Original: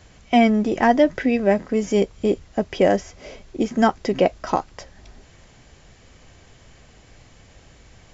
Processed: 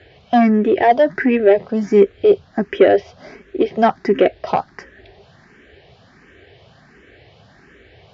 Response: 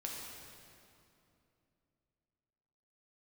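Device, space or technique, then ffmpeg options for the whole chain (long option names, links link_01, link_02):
barber-pole phaser into a guitar amplifier: -filter_complex "[0:a]asplit=2[link_01][link_02];[link_02]afreqshift=1.4[link_03];[link_01][link_03]amix=inputs=2:normalize=1,asoftclip=type=tanh:threshold=-12.5dB,highpass=90,equalizer=frequency=400:width_type=q:width=4:gain=8,equalizer=frequency=690:width_type=q:width=4:gain=3,equalizer=frequency=1000:width_type=q:width=4:gain=-3,equalizer=frequency=1700:width_type=q:width=4:gain=7,lowpass=frequency=4400:width=0.5412,lowpass=frequency=4400:width=1.3066,volume=5.5dB"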